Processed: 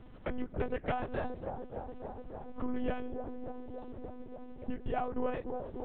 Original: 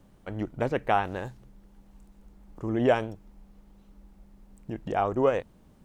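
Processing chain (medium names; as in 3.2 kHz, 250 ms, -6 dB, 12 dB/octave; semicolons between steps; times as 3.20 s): compression 12:1, threshold -36 dBFS, peak gain reduction 19.5 dB; feedback echo behind a band-pass 290 ms, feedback 78%, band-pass 480 Hz, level -6.5 dB; monotone LPC vocoder at 8 kHz 250 Hz; trim +5.5 dB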